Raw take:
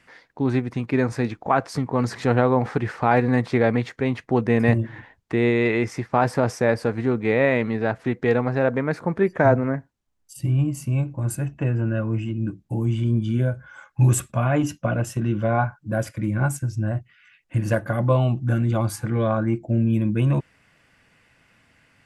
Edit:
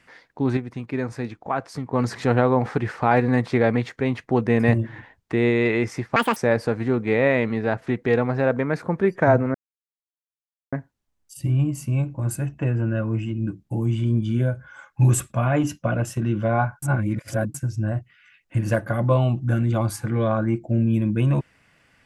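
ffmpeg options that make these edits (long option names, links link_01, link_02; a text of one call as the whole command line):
ffmpeg -i in.wav -filter_complex "[0:a]asplit=8[link_01][link_02][link_03][link_04][link_05][link_06][link_07][link_08];[link_01]atrim=end=0.572[link_09];[link_02]atrim=start=0.568:end=1.932,asetpts=PTS-STARTPTS,volume=-5.5dB[link_10];[link_03]atrim=start=1.928:end=6.164[link_11];[link_04]atrim=start=6.16:end=6.54,asetpts=PTS-STARTPTS,asetrate=82026,aresample=44100[link_12];[link_05]atrim=start=6.536:end=9.72,asetpts=PTS-STARTPTS,afade=type=out:start_time=3.18:duration=0.004:curve=hsin,apad=pad_dur=1.18[link_13];[link_06]atrim=start=9.72:end=15.822,asetpts=PTS-STARTPTS,afade=type=in:duration=0.004:curve=hsin[link_14];[link_07]atrim=start=15.818:end=16.542,asetpts=PTS-STARTPTS,areverse[link_15];[link_08]atrim=start=16.538[link_16];[link_09][link_10]acrossfade=duration=0.004:curve1=hsin:curve2=hsin[link_17];[link_17][link_11]acrossfade=duration=0.004:curve1=hsin:curve2=hsin[link_18];[link_18][link_12]acrossfade=duration=0.004:curve1=hsin:curve2=hsin[link_19];[link_13][link_14]concat=n=2:v=0:a=1[link_20];[link_19][link_20]acrossfade=duration=0.004:curve1=hsin:curve2=hsin[link_21];[link_21][link_15]acrossfade=duration=0.004:curve1=hsin:curve2=hsin[link_22];[link_22][link_16]acrossfade=duration=0.004:curve1=hsin:curve2=hsin" out.wav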